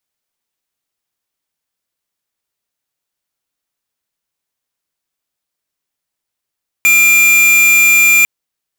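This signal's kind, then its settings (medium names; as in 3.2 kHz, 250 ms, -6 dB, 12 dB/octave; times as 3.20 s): tone square 2.39 kHz -8.5 dBFS 1.40 s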